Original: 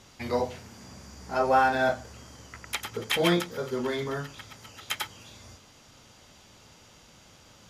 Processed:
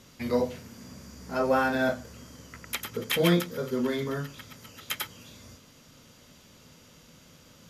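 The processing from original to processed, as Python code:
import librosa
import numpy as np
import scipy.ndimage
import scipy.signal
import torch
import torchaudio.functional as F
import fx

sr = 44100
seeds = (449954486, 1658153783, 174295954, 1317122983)

y = fx.graphic_eq_31(x, sr, hz=(160, 250, 500, 800, 12500), db=(8, 7, 4, -7, 10))
y = y * 10.0 ** (-1.5 / 20.0)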